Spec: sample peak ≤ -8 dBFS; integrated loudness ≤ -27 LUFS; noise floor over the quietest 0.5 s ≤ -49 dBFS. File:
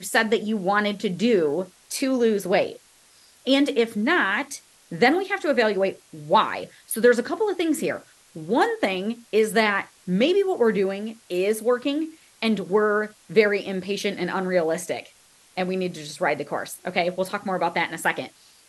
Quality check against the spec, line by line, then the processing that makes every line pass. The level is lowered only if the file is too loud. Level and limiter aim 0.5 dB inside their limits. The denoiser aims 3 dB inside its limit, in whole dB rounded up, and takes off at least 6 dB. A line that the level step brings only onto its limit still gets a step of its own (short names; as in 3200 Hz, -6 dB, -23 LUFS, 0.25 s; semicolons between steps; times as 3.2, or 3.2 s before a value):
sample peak -4.5 dBFS: fail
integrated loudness -23.5 LUFS: fail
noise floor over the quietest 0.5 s -55 dBFS: OK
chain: gain -4 dB